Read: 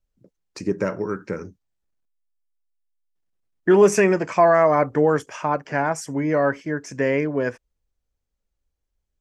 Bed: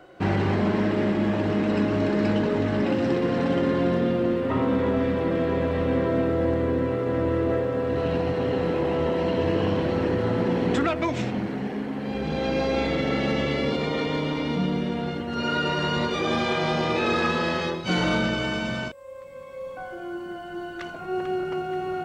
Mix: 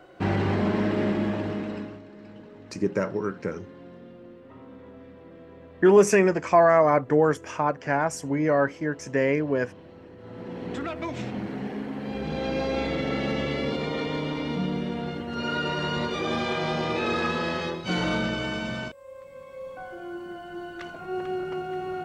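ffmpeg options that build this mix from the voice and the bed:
-filter_complex "[0:a]adelay=2150,volume=-2dB[a];[1:a]volume=18.5dB,afade=t=out:st=1.11:d=0.91:silence=0.0841395,afade=t=in:st=10.17:d=1.46:silence=0.1[b];[a][b]amix=inputs=2:normalize=0"

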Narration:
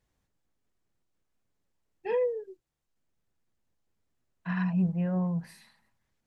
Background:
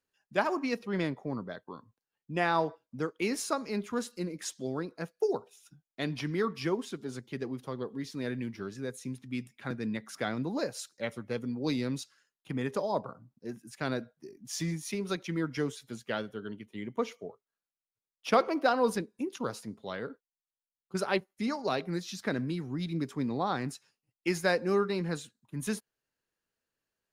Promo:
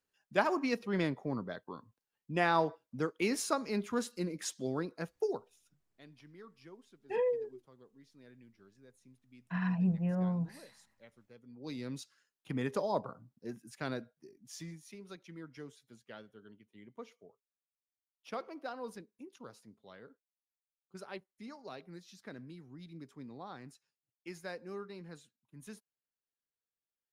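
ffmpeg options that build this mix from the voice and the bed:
-filter_complex "[0:a]adelay=5050,volume=-3.5dB[a];[1:a]volume=20dB,afade=t=out:st=4.92:d=0.91:silence=0.0794328,afade=t=in:st=11.45:d=0.97:silence=0.0891251,afade=t=out:st=13.29:d=1.56:silence=0.199526[b];[a][b]amix=inputs=2:normalize=0"

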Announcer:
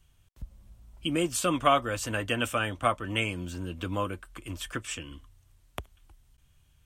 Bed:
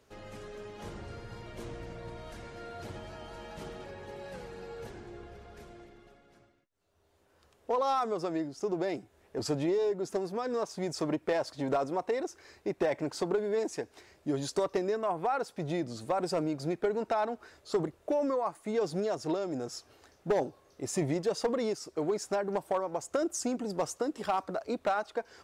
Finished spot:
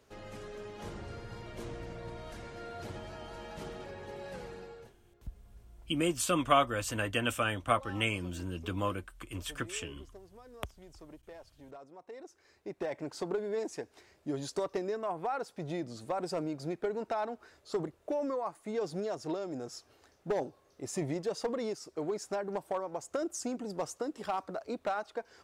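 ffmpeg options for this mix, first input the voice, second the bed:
-filter_complex "[0:a]adelay=4850,volume=-2.5dB[a];[1:a]volume=16.5dB,afade=t=out:st=4.49:d=0.46:silence=0.0944061,afade=t=in:st=11.97:d=1.38:silence=0.149624[b];[a][b]amix=inputs=2:normalize=0"

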